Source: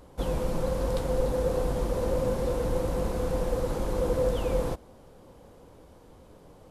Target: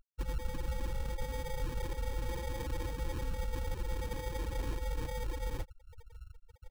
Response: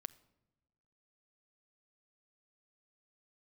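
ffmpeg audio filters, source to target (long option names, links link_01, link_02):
-af "aecho=1:1:84|276|323|338|568|875:0.316|0.112|0.473|0.631|0.316|0.422,areverse,acompressor=threshold=-36dB:ratio=12,areverse,afftfilt=real='re*gte(hypot(re,im),0.0282)':imag='im*gte(hypot(re,im),0.0282)':win_size=1024:overlap=0.75,equalizer=frequency=430:width=2.9:gain=-10.5,aecho=1:1:2.6:0.52,acrusher=samples=32:mix=1:aa=0.000001,volume=4.5dB"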